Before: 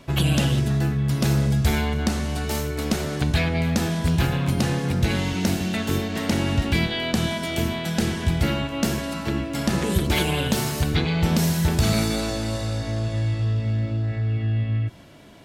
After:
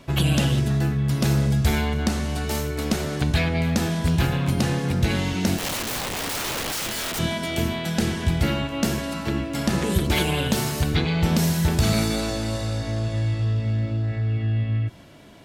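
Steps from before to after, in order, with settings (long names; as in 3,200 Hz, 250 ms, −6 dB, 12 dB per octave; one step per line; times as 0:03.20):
0:05.58–0:07.19: wrap-around overflow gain 23 dB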